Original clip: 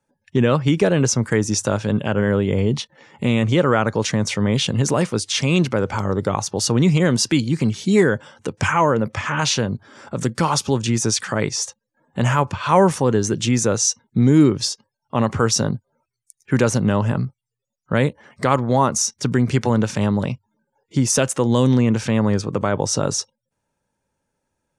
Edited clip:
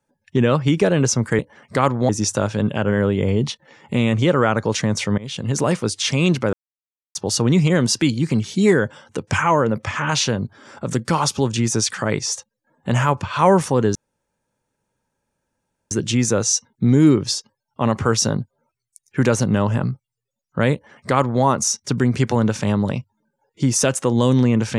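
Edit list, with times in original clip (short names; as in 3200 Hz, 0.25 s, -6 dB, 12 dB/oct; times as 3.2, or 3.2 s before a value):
4.48–4.95 fade in, from -22 dB
5.83–6.45 mute
13.25 insert room tone 1.96 s
18.07–18.77 copy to 1.39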